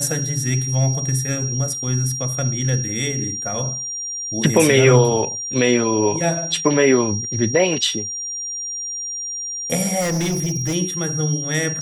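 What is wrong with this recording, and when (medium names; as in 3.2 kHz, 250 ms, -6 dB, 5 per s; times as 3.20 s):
whine 5.7 kHz -25 dBFS
10.00–10.75 s: clipped -18 dBFS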